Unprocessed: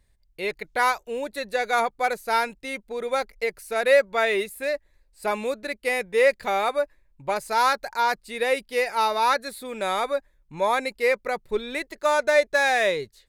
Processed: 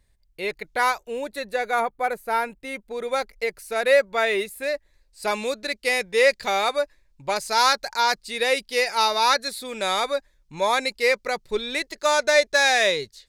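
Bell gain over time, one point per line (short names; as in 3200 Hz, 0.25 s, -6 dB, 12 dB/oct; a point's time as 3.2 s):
bell 5200 Hz 1.6 oct
1.31 s +1.5 dB
1.91 s -9.5 dB
2.42 s -9.5 dB
2.99 s +2.5 dB
4.62 s +2.5 dB
5.31 s +11 dB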